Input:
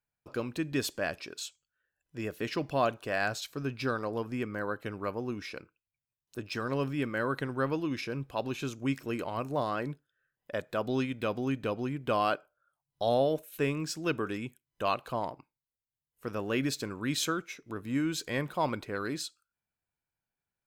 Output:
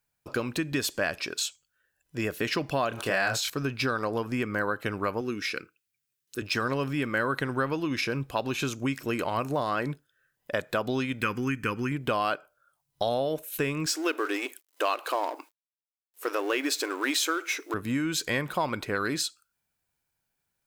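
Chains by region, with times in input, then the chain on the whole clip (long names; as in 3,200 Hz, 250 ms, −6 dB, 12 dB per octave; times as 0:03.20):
0:02.89–0:03.50: double-tracking delay 26 ms −2.5 dB + level that may fall only so fast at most 71 dB per second
0:05.21–0:06.42: high-pass filter 220 Hz 6 dB per octave + flat-topped bell 770 Hz −10.5 dB 1.1 octaves
0:11.22–0:11.92: parametric band 4,000 Hz +7 dB 2.7 octaves + phaser with its sweep stopped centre 1,600 Hz, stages 4
0:13.86–0:17.74: mu-law and A-law mismatch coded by mu + linear-phase brick-wall high-pass 270 Hz
whole clip: high-shelf EQ 4,200 Hz +5.5 dB; downward compressor 5 to 1, threshold −33 dBFS; dynamic equaliser 1,600 Hz, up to +4 dB, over −48 dBFS, Q 0.71; level +7 dB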